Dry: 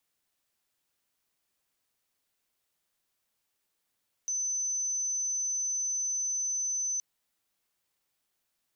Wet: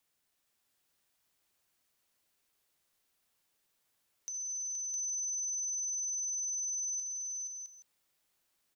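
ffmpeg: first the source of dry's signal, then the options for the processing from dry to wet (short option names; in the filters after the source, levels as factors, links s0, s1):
-f lavfi -i "sine=f=6080:d=2.72:r=44100,volume=-10.44dB"
-filter_complex "[0:a]acompressor=threshold=0.00708:ratio=3,asplit=2[s0][s1];[s1]aecho=0:1:64|213|472|660|821:0.224|0.133|0.473|0.562|0.188[s2];[s0][s2]amix=inputs=2:normalize=0"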